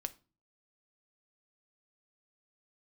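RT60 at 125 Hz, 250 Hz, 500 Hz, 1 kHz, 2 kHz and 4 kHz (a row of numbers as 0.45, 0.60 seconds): 0.60, 0.50, 0.35, 0.35, 0.30, 0.30 seconds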